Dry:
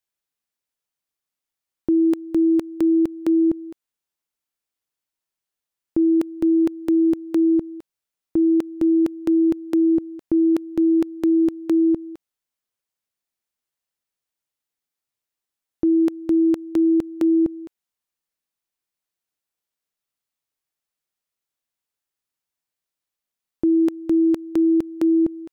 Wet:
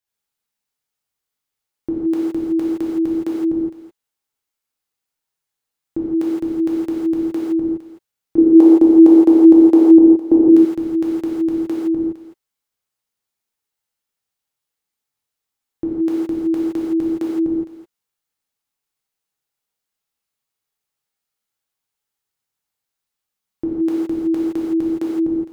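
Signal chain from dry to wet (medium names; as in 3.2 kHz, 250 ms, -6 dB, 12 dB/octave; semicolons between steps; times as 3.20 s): 8.38–10.48 s: high-order bell 510 Hz +12 dB 2.3 oct; gated-style reverb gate 190 ms flat, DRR -6 dB; trim -3 dB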